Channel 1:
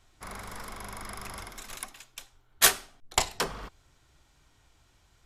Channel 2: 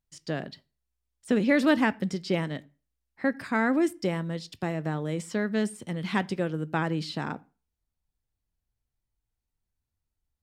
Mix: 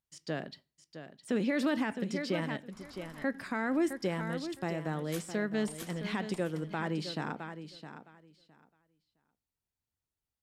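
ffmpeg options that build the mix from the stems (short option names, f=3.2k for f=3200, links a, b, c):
-filter_complex "[0:a]adelay=2500,volume=-14.5dB,asplit=2[a][b];[b]volume=-13dB[c];[1:a]highpass=f=140:p=1,volume=-3.5dB,asplit=3[d][e][f];[e]volume=-11dB[g];[f]apad=whole_len=342093[h];[a][h]sidechaincompress=threshold=-40dB:ratio=8:attack=5.9:release=457[i];[c][g]amix=inputs=2:normalize=0,aecho=0:1:662|1324|1986:1|0.17|0.0289[j];[i][d][j]amix=inputs=3:normalize=0,alimiter=limit=-21.5dB:level=0:latency=1:release=31"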